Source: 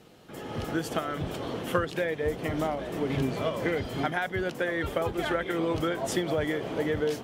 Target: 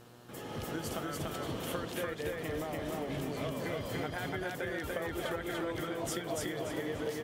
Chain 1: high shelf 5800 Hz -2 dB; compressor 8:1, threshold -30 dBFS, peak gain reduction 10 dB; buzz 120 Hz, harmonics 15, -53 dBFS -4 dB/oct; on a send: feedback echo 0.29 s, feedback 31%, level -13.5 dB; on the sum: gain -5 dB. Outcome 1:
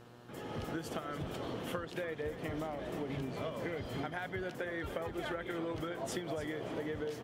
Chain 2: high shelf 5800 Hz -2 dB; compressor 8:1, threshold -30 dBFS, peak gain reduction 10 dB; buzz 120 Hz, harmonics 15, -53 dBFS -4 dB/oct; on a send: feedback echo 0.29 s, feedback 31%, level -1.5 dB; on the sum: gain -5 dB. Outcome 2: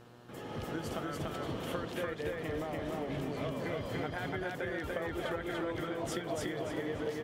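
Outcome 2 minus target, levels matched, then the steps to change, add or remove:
8000 Hz band -5.5 dB
change: high shelf 5800 Hz +9 dB

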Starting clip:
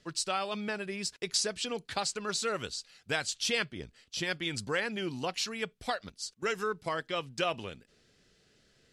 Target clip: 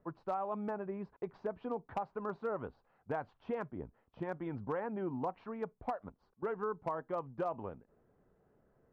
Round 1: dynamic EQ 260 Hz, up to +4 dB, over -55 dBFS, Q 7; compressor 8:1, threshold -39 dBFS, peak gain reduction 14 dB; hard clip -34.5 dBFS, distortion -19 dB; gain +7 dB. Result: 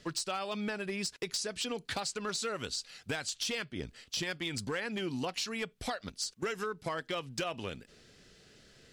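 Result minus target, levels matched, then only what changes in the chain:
1000 Hz band -5.0 dB
add after dynamic EQ: ladder low-pass 1100 Hz, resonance 50%

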